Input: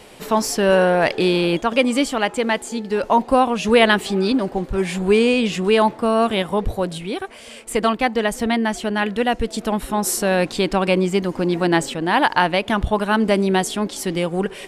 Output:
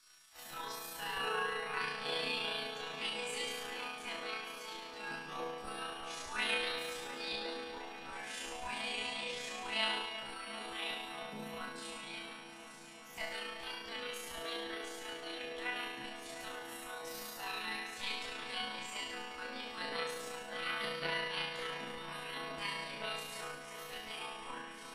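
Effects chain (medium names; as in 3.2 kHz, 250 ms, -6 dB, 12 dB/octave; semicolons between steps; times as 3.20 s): spectral gate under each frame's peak -15 dB weak; whistle 5.6 kHz -56 dBFS; chord resonator E3 sus4, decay 0.7 s; granular stretch 1.7×, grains 71 ms; feedback echo behind a low-pass 353 ms, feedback 80%, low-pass 2.7 kHz, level -10 dB; trim +10 dB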